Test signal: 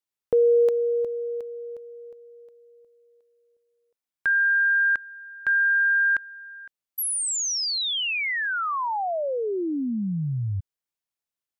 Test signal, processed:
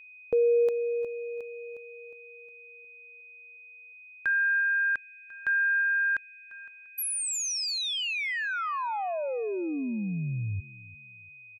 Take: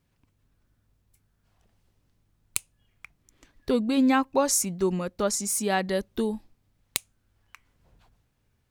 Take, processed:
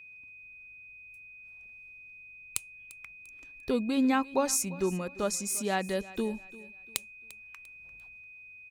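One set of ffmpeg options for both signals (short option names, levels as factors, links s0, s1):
-af "aecho=1:1:346|692|1038:0.106|0.035|0.0115,aeval=exprs='val(0)+0.00708*sin(2*PI*2500*n/s)':c=same,volume=0.596"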